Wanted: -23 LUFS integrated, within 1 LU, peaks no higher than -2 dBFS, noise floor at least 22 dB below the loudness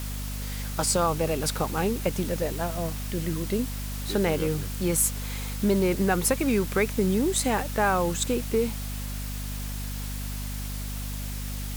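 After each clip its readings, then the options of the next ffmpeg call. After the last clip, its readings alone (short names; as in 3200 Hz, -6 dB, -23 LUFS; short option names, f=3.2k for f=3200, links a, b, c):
hum 50 Hz; harmonics up to 250 Hz; hum level -31 dBFS; noise floor -33 dBFS; noise floor target -50 dBFS; loudness -27.5 LUFS; peak -10.0 dBFS; loudness target -23.0 LUFS
-> -af "bandreject=f=50:t=h:w=4,bandreject=f=100:t=h:w=4,bandreject=f=150:t=h:w=4,bandreject=f=200:t=h:w=4,bandreject=f=250:t=h:w=4"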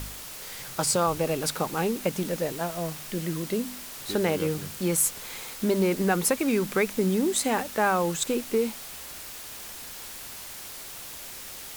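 hum none; noise floor -41 dBFS; noise floor target -50 dBFS
-> -af "afftdn=nr=9:nf=-41"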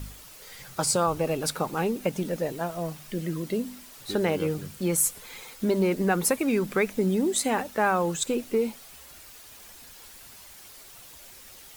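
noise floor -48 dBFS; noise floor target -49 dBFS
-> -af "afftdn=nr=6:nf=-48"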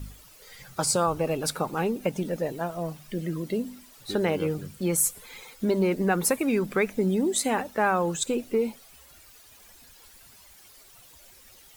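noise floor -53 dBFS; loudness -27.0 LUFS; peak -10.5 dBFS; loudness target -23.0 LUFS
-> -af "volume=4dB"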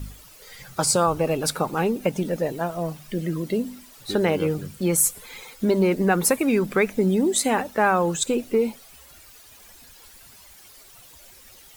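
loudness -23.0 LUFS; peak -6.5 dBFS; noise floor -49 dBFS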